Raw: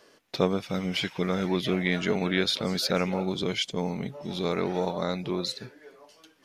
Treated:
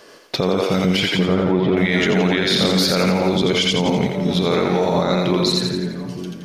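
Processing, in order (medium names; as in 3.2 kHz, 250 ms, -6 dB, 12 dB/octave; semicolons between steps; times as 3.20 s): 1.08–1.77 s: tape spacing loss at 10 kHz 44 dB; two-band feedback delay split 310 Hz, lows 442 ms, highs 85 ms, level -3 dB; loudness maximiser +19 dB; trim -7 dB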